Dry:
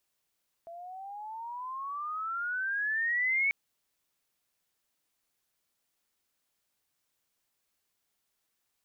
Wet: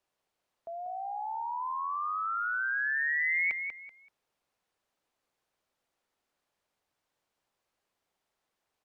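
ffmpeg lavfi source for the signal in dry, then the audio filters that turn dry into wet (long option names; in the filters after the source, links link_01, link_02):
-f lavfi -i "aevalsrc='pow(10,(-24+18*(t/2.84-1))/20)*sin(2*PI*667*2.84/(21*log(2)/12)*(exp(21*log(2)/12*t/2.84)-1))':duration=2.84:sample_rate=44100"
-filter_complex "[0:a]aemphasis=mode=reproduction:type=50kf,acrossover=split=430|1000[link_01][link_02][link_03];[link_02]acontrast=84[link_04];[link_01][link_04][link_03]amix=inputs=3:normalize=0,aecho=1:1:191|382|573:0.447|0.116|0.0302"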